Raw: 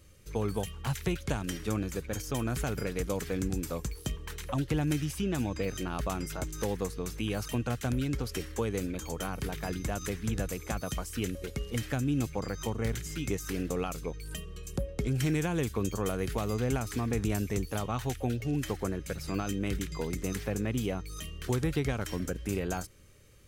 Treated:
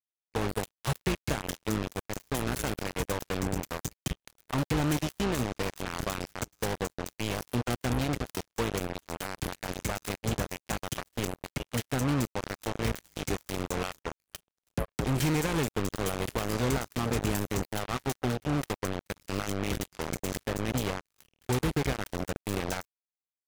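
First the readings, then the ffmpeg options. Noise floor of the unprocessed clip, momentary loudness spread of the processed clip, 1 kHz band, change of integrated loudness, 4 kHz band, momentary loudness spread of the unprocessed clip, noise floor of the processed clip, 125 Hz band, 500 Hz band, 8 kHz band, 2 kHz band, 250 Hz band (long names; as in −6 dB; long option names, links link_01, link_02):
−45 dBFS, 8 LU, +4.0 dB, +1.0 dB, +4.0 dB, 6 LU, below −85 dBFS, −0.5 dB, +0.5 dB, +2.0 dB, +3.5 dB, 0.0 dB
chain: -af "acrusher=bits=4:mix=0:aa=0.5,aeval=exprs='0.133*(cos(1*acos(clip(val(0)/0.133,-1,1)))-cos(1*PI/2))+0.0266*(cos(7*acos(clip(val(0)/0.133,-1,1)))-cos(7*PI/2))':channel_layout=same"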